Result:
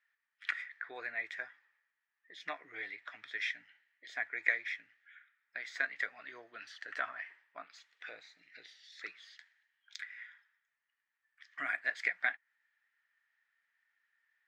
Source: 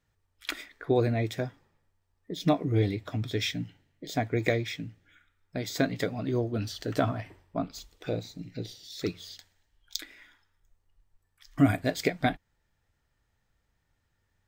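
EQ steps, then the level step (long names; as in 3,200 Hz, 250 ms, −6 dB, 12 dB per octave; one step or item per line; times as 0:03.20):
dynamic equaliser 3,700 Hz, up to −6 dB, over −49 dBFS, Q 0.99
high-pass with resonance 1,800 Hz, resonance Q 3.9
head-to-tape spacing loss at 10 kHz 24 dB
0.0 dB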